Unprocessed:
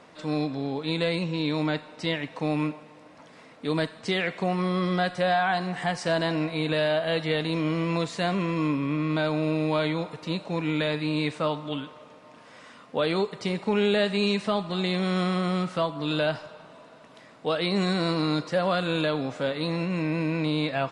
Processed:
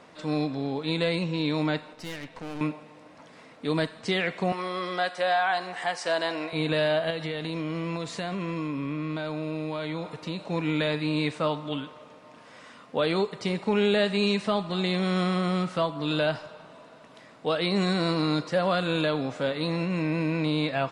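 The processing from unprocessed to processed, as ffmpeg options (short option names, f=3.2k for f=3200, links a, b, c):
-filter_complex "[0:a]asettb=1/sr,asplit=3[a][b][c];[a]atrim=end=1.934[d];[b]atrim=start=1.93:end=2.61,asetpts=PTS-STARTPTS,afade=t=in:d=0.004:c=qsin,afade=t=out:st=0.676:d=0.004:c=qsin,aeval=exprs='(tanh(50.1*val(0)+0.75)-tanh(0.75))/50.1':c=same[e];[c]atrim=start=2.606[f];[d][e]acrossfade=d=0.004:c1=hsin:c2=qsin[g];[g][f]acrossfade=d=0.004:c1=qsin:c2=hsin,asettb=1/sr,asplit=3[h][i][j];[h]atrim=end=4.524[k];[i]atrim=start=4.52:end=6.53,asetpts=PTS-STARTPTS,afade=t=in:d=0.004:c=qsin,afade=t=out:st=2.006:d=0.004:c=qsin,highpass=440[l];[j]atrim=start=6.526[m];[k][l]acrossfade=d=0.004:c1=hsin:c2=qsin[n];[n][m]acrossfade=d=0.004:c1=qsin:c2=hsin,asettb=1/sr,asplit=3[o][p][q];[o]atrim=end=7.104[r];[p]atrim=start=7.1:end=10.42,asetpts=PTS-STARTPTS,afade=t=in:d=0.004:c=qsin,afade=t=out:st=3.316:d=0.004:c=qsin,acompressor=threshold=-27dB:ratio=6:attack=3.2:release=140:knee=1:detection=peak[s];[q]atrim=start=10.416[t];[r][s]acrossfade=d=0.004:c1=hsin:c2=qsin[u];[u][t]acrossfade=d=0.004:c1=qsin:c2=hsin"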